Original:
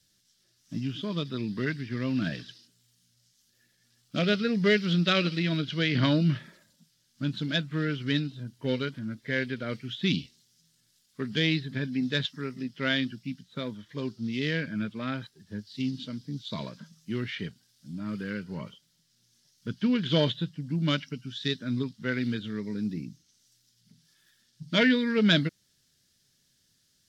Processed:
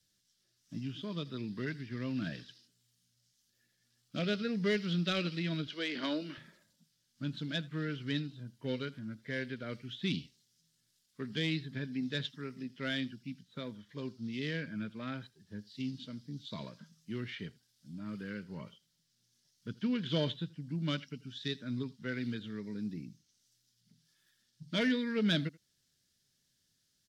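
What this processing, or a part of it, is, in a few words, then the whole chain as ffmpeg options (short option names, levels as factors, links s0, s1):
one-band saturation: -filter_complex "[0:a]acrossover=split=560|2900[s0][s1][s2];[s1]asoftclip=type=tanh:threshold=0.0531[s3];[s0][s3][s2]amix=inputs=3:normalize=0,asettb=1/sr,asplit=3[s4][s5][s6];[s4]atrim=end=5.674[s7];[s5]atrim=start=5.67:end=6.38,asetpts=PTS-STARTPTS,afade=t=in:d=0.004:c=qsin,afade=t=out:st=0.706:d=0.004:c=qsin,highpass=f=280:w=0.5412,highpass=f=280:w=1.3066[s8];[s6]atrim=start=6.376[s9];[s7][s8]acrossfade=d=0.004:c1=hsin:c2=qsin[s10];[s10][s9]acrossfade=d=0.004:c1=qsin:c2=hsin,aecho=1:1:82:0.0708,volume=0.422"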